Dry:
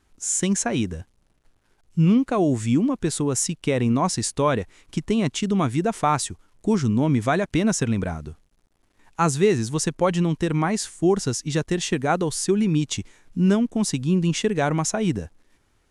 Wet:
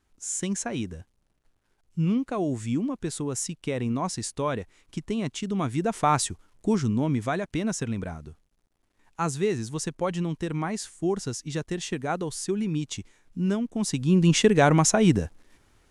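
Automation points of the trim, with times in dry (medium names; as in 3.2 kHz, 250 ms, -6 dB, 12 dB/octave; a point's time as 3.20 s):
5.48 s -7 dB
6.22 s 0 dB
7.42 s -7 dB
13.67 s -7 dB
14.34 s +3.5 dB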